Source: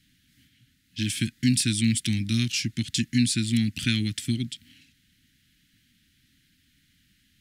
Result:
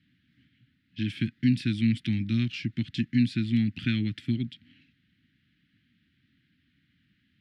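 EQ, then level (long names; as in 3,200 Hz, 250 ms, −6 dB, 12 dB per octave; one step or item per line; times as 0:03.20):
high-pass filter 95 Hz
high-frequency loss of the air 380 metres
0.0 dB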